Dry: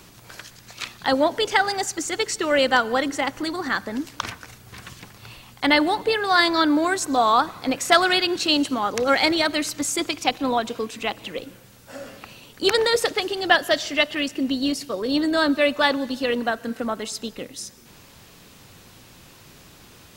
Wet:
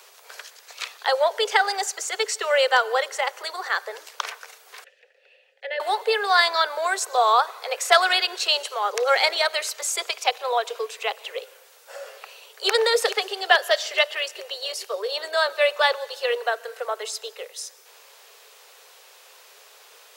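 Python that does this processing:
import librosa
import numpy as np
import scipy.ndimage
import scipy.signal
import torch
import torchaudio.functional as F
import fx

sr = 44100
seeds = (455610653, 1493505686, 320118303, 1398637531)

y = fx.vowel_filter(x, sr, vowel='e', at=(4.84, 5.8))
y = fx.echo_throw(y, sr, start_s=12.14, length_s=0.56, ms=430, feedback_pct=65, wet_db=-10.0)
y = scipy.signal.sosfilt(scipy.signal.butter(16, 410.0, 'highpass', fs=sr, output='sos'), y)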